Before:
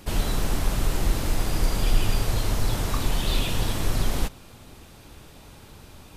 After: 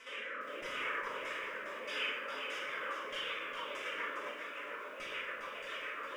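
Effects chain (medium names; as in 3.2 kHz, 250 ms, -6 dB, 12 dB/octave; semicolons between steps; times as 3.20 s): high-pass 470 Hz 24 dB/octave; reverb removal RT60 0.96 s; peak limiter -30 dBFS, peak gain reduction 10 dB; reverse; compression 16:1, threshold -50 dBFS, peak gain reduction 15 dB; reverse; formant-preserving pitch shift +3.5 st; rotary cabinet horn 0.85 Hz, later 7 Hz, at 1.83 s; LFO low-pass saw down 1.6 Hz 600–4600 Hz; static phaser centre 1.8 kHz, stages 4; simulated room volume 320 m³, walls mixed, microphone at 2 m; bit-crushed delay 407 ms, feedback 35%, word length 13-bit, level -6 dB; trim +13.5 dB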